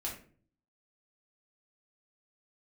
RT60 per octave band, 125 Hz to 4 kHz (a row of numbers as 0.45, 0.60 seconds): 0.80, 0.70, 0.50, 0.35, 0.35, 0.30 seconds